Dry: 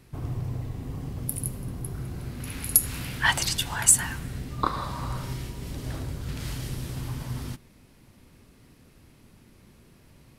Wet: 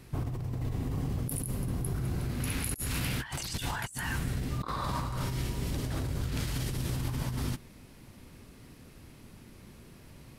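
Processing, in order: negative-ratio compressor -34 dBFS, ratio -1

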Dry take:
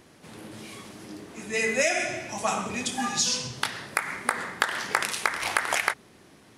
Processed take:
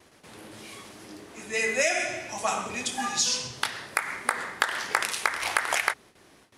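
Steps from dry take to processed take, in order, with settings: gate with hold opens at -44 dBFS; bell 170 Hz -7 dB 1.7 oct

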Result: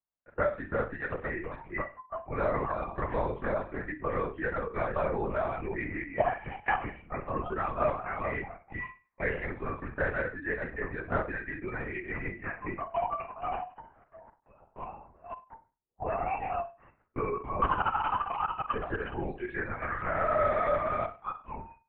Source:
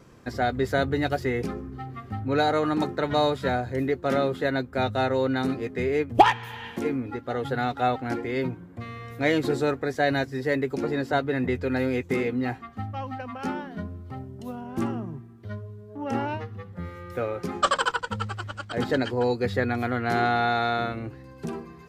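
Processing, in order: reverse delay 0.26 s, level -5.5 dB; gate -33 dBFS, range -29 dB; spectral noise reduction 21 dB; 11.74–13.15 comb 4.6 ms, depth 54%; compressor 5:1, threshold -33 dBFS, peak gain reduction 20.5 dB; on a send: flutter echo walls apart 8.2 m, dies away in 0.32 s; on the sum: mistuned SSB -130 Hz 580–2400 Hz; LPC vocoder at 8 kHz whisper; 5.26–6.04 sustainer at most 45 dB/s; gain +8 dB

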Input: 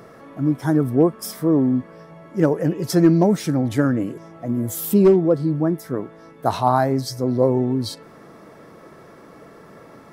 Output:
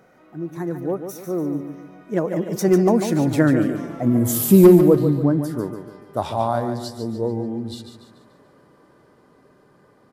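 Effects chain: Doppler pass-by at 4.14, 38 m/s, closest 29 m; feedback echo 0.145 s, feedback 42%, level -8.5 dB; gain +5 dB

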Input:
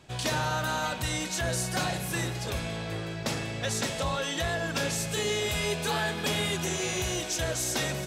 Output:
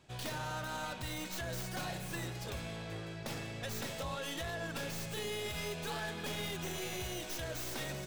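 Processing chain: tracing distortion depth 0.12 ms; limiter -22 dBFS, peak gain reduction 4.5 dB; gain -8.5 dB

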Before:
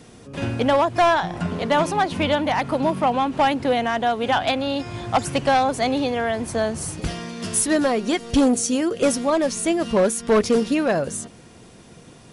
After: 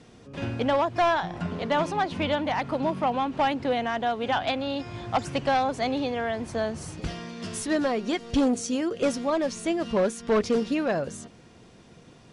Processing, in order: LPF 6200 Hz 12 dB/oct; gain -5.5 dB

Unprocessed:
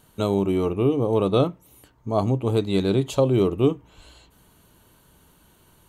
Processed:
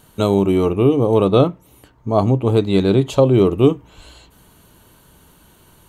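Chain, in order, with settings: 1.24–3.47 high shelf 5000 Hz -7 dB; gain +6.5 dB

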